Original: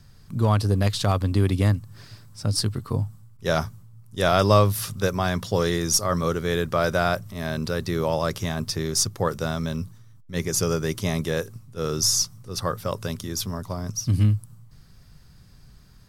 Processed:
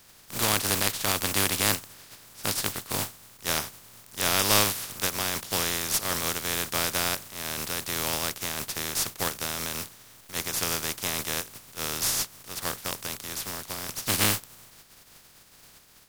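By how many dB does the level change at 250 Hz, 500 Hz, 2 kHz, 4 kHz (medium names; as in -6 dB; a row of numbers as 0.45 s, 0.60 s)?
-9.5 dB, -10.5 dB, +1.0 dB, +1.5 dB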